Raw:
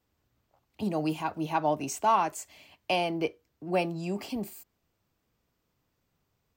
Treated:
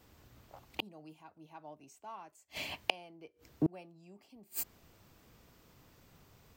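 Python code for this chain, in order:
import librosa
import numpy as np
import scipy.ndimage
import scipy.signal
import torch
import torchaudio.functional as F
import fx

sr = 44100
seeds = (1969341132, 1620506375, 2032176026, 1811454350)

y = fx.gate_flip(x, sr, shuts_db=-33.0, range_db=-38)
y = y * 10.0 ** (14.5 / 20.0)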